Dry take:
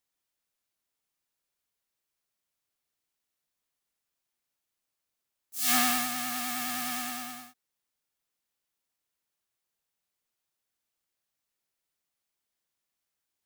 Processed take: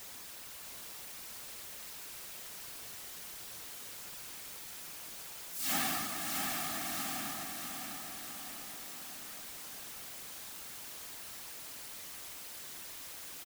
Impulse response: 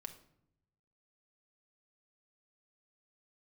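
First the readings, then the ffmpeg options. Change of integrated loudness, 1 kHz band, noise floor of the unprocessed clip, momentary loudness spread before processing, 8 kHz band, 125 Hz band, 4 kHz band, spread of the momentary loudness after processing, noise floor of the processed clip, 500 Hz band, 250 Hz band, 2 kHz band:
-12.0 dB, -6.0 dB, -85 dBFS, 17 LU, -3.0 dB, +4.5 dB, -3.5 dB, 10 LU, -48 dBFS, +0.5 dB, -6.5 dB, -4.5 dB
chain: -filter_complex "[0:a]aeval=exprs='val(0)+0.5*0.0266*sgn(val(0))':c=same,afftfilt=real='hypot(re,im)*cos(2*PI*random(0))':imag='hypot(re,im)*sin(2*PI*random(1))':win_size=512:overlap=0.75,asplit=2[s0][s1];[s1]aecho=0:1:653|1306|1959|2612|3265|3918|4571:0.531|0.292|0.161|0.0883|0.0486|0.0267|0.0147[s2];[s0][s2]amix=inputs=2:normalize=0,volume=0.668"

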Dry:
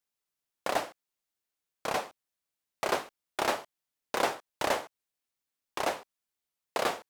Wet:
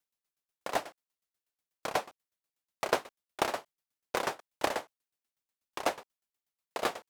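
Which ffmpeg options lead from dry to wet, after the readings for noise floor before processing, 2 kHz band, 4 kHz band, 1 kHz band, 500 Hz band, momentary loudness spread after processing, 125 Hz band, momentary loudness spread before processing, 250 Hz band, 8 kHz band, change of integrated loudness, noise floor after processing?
under -85 dBFS, -2.5 dB, -2.5 dB, -2.0 dB, -2.0 dB, 14 LU, -1.5 dB, 10 LU, -1.5 dB, -2.5 dB, -2.0 dB, under -85 dBFS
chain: -af "aeval=exprs='val(0)*pow(10,-19*if(lt(mod(8.2*n/s,1),2*abs(8.2)/1000),1-mod(8.2*n/s,1)/(2*abs(8.2)/1000),(mod(8.2*n/s,1)-2*abs(8.2)/1000)/(1-2*abs(8.2)/1000))/20)':c=same,volume=1.58"

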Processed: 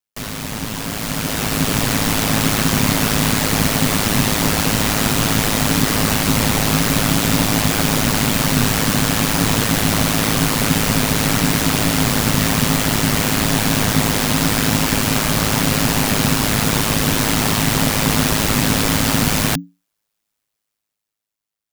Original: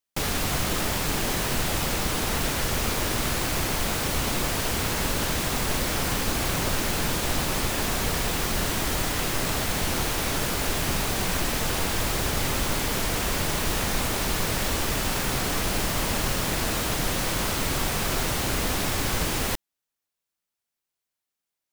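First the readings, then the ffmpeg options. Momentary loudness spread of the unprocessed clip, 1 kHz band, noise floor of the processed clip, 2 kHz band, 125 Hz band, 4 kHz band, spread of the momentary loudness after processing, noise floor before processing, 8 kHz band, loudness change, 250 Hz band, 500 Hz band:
0 LU, +8.0 dB, -81 dBFS, +8.5 dB, +11.5 dB, +8.5 dB, 1 LU, under -85 dBFS, +8.5 dB, +9.5 dB, +13.0 dB, +7.5 dB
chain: -af "afreqshift=-230,highpass=45,aeval=exprs='val(0)*sin(2*PI*53*n/s)':c=same,dynaudnorm=f=240:g=11:m=3.55,volume=1.26"

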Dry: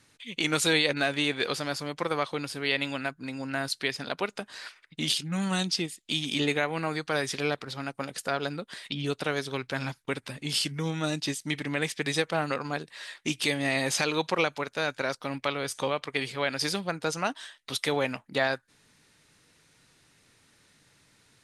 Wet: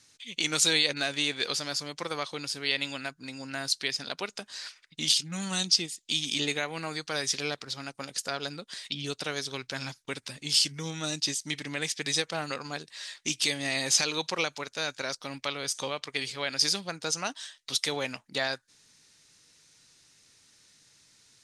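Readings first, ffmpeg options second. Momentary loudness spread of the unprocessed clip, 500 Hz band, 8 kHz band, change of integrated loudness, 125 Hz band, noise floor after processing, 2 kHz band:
9 LU, -6.0 dB, +6.0 dB, 0.0 dB, -6.0 dB, -66 dBFS, -3.0 dB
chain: -af "equalizer=f=5900:t=o:w=1.6:g=14,volume=0.501"

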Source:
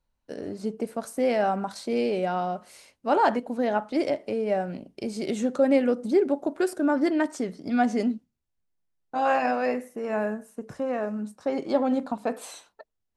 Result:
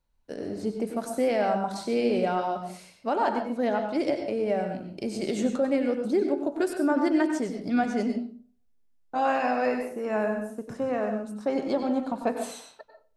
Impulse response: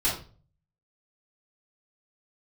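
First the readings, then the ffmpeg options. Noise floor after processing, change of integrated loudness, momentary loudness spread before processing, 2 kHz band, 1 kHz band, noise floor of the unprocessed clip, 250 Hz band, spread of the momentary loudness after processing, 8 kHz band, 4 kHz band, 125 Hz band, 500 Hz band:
-63 dBFS, -1.0 dB, 12 LU, -1.0 dB, -1.5 dB, -79 dBFS, -0.5 dB, 10 LU, 0.0 dB, 0.0 dB, +0.5 dB, -1.0 dB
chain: -filter_complex "[0:a]alimiter=limit=0.15:level=0:latency=1:release=483,asplit=2[s0][s1];[1:a]atrim=start_sample=2205,adelay=90[s2];[s1][s2]afir=irnorm=-1:irlink=0,volume=0.158[s3];[s0][s3]amix=inputs=2:normalize=0"

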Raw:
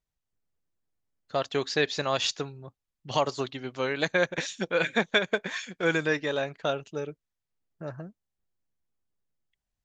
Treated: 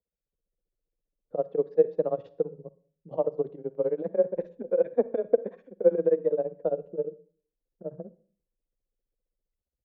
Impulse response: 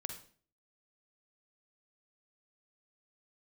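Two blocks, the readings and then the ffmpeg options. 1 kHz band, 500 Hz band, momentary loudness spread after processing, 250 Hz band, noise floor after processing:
-9.5 dB, +4.5 dB, 16 LU, -3.0 dB, under -85 dBFS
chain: -filter_complex "[0:a]tremolo=f=15:d=0.95,afreqshift=21,lowpass=f=500:t=q:w=5,asplit=2[s0][s1];[1:a]atrim=start_sample=2205[s2];[s1][s2]afir=irnorm=-1:irlink=0,volume=0.422[s3];[s0][s3]amix=inputs=2:normalize=0,volume=0.596"

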